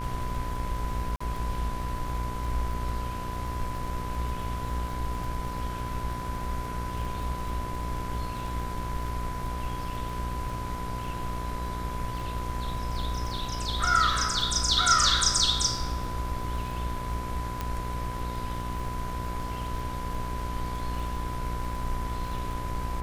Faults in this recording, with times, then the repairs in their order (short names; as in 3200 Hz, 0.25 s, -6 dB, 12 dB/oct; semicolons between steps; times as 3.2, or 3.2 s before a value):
buzz 60 Hz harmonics 39 -35 dBFS
crackle 45/s -36 dBFS
tone 1000 Hz -36 dBFS
1.16–1.21 gap 45 ms
17.61 pop -16 dBFS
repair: de-click; notch 1000 Hz, Q 30; de-hum 60 Hz, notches 39; interpolate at 1.16, 45 ms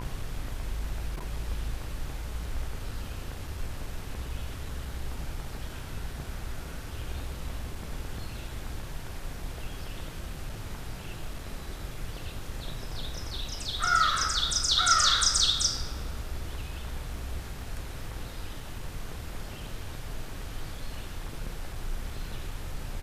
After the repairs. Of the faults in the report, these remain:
17.61 pop